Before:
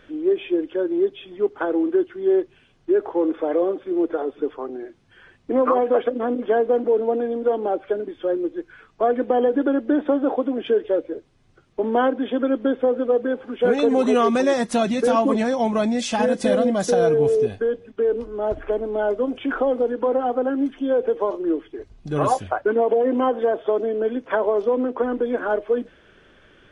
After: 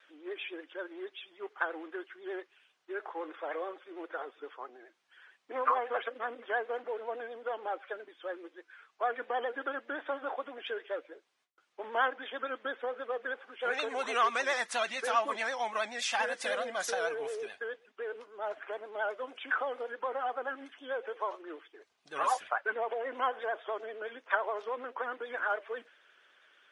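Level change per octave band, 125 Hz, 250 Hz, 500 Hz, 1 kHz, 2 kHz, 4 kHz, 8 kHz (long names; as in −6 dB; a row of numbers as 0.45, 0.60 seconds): below −35 dB, −27.0 dB, −17.5 dB, −7.5 dB, −1.5 dB, −4.5 dB, −6.5 dB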